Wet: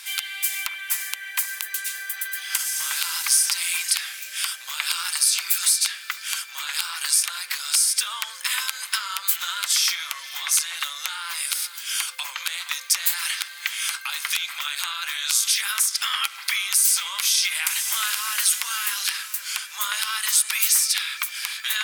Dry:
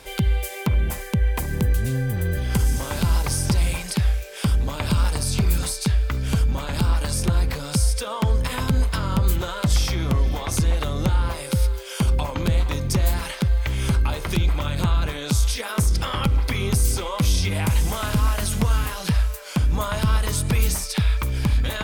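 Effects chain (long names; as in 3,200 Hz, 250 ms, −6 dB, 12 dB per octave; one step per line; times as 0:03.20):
high-pass filter 1,400 Hz 24 dB per octave
high-shelf EQ 4,300 Hz +6 dB
level +5 dB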